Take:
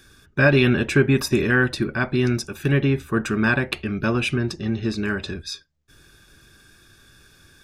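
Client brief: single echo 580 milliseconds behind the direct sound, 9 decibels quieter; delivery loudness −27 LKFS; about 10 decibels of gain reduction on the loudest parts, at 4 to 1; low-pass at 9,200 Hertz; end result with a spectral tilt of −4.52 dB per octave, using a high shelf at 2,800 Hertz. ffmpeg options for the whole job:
ffmpeg -i in.wav -af "lowpass=9200,highshelf=frequency=2800:gain=9,acompressor=threshold=-23dB:ratio=4,aecho=1:1:580:0.355,volume=-0.5dB" out.wav

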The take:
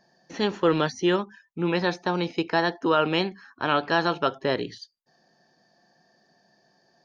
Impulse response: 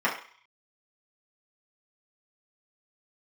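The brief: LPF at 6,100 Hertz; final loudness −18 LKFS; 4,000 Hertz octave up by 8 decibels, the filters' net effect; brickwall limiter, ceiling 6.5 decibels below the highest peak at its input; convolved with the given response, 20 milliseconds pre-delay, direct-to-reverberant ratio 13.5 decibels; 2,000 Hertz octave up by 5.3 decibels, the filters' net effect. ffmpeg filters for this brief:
-filter_complex "[0:a]lowpass=6100,equalizer=frequency=2000:width_type=o:gain=5,equalizer=frequency=4000:width_type=o:gain=9,alimiter=limit=-11.5dB:level=0:latency=1,asplit=2[link_01][link_02];[1:a]atrim=start_sample=2205,adelay=20[link_03];[link_02][link_03]afir=irnorm=-1:irlink=0,volume=-28dB[link_04];[link_01][link_04]amix=inputs=2:normalize=0,volume=6.5dB"

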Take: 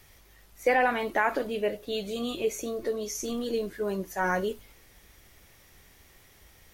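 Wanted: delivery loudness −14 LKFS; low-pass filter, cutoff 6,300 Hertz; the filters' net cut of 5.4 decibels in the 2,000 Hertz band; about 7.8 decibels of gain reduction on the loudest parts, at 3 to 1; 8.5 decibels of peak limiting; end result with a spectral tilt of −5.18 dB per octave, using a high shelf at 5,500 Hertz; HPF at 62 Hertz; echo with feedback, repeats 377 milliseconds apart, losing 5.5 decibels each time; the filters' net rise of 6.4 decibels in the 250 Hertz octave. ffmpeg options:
ffmpeg -i in.wav -af "highpass=62,lowpass=6300,equalizer=frequency=250:width_type=o:gain=7.5,equalizer=frequency=2000:width_type=o:gain=-7,highshelf=frequency=5500:gain=-3.5,acompressor=threshold=-29dB:ratio=3,alimiter=level_in=2dB:limit=-24dB:level=0:latency=1,volume=-2dB,aecho=1:1:377|754|1131|1508|1885|2262|2639:0.531|0.281|0.149|0.079|0.0419|0.0222|0.0118,volume=20.5dB" out.wav

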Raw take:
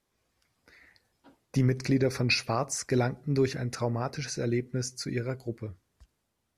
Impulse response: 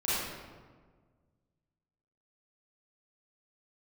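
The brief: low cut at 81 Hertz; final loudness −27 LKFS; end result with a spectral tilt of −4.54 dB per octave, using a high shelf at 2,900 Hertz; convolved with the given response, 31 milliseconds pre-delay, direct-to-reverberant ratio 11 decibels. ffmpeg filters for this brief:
-filter_complex "[0:a]highpass=81,highshelf=frequency=2900:gain=4.5,asplit=2[link_01][link_02];[1:a]atrim=start_sample=2205,adelay=31[link_03];[link_02][link_03]afir=irnorm=-1:irlink=0,volume=-20dB[link_04];[link_01][link_04]amix=inputs=2:normalize=0,volume=1.5dB"

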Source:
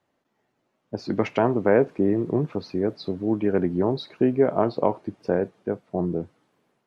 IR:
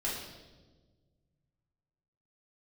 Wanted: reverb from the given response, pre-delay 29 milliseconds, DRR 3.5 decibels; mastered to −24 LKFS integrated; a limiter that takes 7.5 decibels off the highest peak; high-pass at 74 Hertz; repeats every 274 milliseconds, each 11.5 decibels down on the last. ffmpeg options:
-filter_complex "[0:a]highpass=74,alimiter=limit=-13.5dB:level=0:latency=1,aecho=1:1:274|548|822:0.266|0.0718|0.0194,asplit=2[link_01][link_02];[1:a]atrim=start_sample=2205,adelay=29[link_03];[link_02][link_03]afir=irnorm=-1:irlink=0,volume=-8.5dB[link_04];[link_01][link_04]amix=inputs=2:normalize=0,volume=0.5dB"

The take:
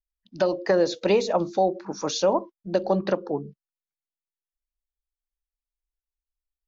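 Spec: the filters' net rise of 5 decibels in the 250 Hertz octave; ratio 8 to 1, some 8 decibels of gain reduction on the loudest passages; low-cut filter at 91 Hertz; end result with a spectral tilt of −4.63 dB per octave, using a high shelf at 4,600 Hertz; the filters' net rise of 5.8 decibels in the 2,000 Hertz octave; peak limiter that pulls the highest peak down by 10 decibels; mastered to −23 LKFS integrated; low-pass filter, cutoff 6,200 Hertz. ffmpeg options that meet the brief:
ffmpeg -i in.wav -af "highpass=91,lowpass=6200,equalizer=frequency=250:width_type=o:gain=8,equalizer=frequency=2000:width_type=o:gain=8.5,highshelf=frequency=4600:gain=-6.5,acompressor=threshold=-22dB:ratio=8,volume=8.5dB,alimiter=limit=-12dB:level=0:latency=1" out.wav

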